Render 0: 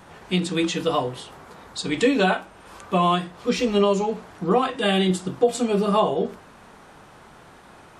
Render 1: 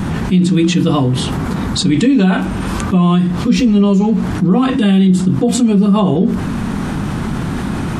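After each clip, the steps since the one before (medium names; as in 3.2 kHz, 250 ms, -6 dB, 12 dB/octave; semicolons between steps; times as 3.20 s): resonant low shelf 350 Hz +12.5 dB, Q 1.5; level flattener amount 70%; trim -4.5 dB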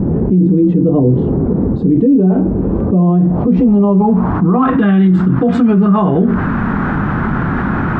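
low-pass sweep 450 Hz -> 1.5 kHz, 2.69–4.99 s; loudness maximiser +6 dB; trim -3 dB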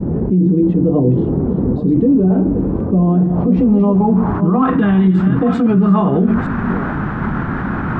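chunks repeated in reverse 462 ms, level -9 dB; expander -12 dBFS; trim -2.5 dB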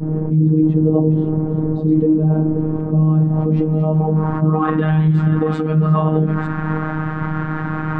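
robot voice 156 Hz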